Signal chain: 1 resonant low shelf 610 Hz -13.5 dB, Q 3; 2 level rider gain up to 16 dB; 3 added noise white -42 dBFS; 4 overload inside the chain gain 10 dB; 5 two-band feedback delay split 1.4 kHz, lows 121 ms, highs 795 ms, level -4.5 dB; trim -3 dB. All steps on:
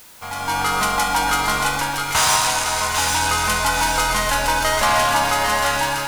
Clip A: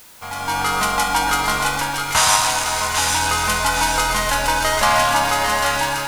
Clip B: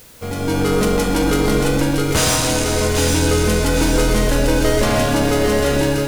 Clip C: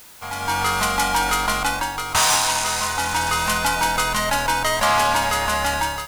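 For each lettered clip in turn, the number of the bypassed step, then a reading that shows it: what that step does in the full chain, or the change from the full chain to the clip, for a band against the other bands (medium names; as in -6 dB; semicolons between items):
4, distortion -16 dB; 1, 250 Hz band +16.0 dB; 5, echo-to-direct -3.0 dB to none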